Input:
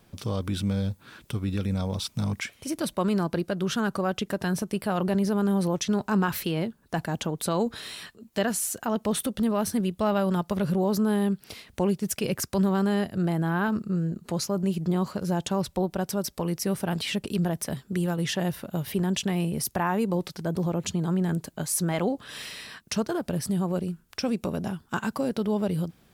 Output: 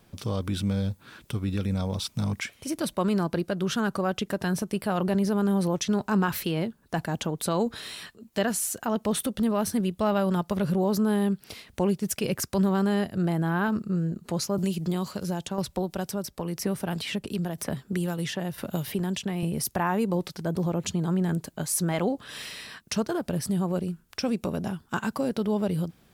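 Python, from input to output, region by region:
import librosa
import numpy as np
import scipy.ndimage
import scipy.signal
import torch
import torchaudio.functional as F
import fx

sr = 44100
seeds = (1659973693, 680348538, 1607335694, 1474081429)

y = fx.chain(x, sr, fx.tremolo_shape(shape='saw_down', hz=1.0, depth_pct=60),
    fx.band_squash(depth_pct=70), at=(14.58, 19.43))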